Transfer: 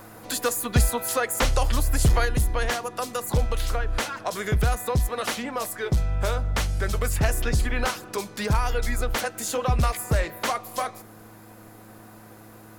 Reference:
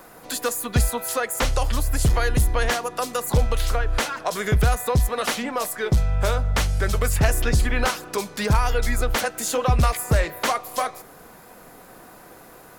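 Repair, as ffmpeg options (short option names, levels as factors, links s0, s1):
-af "bandreject=f=107.9:t=h:w=4,bandreject=f=215.8:t=h:w=4,bandreject=f=323.7:t=h:w=4,asetnsamples=n=441:p=0,asendcmd='2.25 volume volume 3.5dB',volume=1"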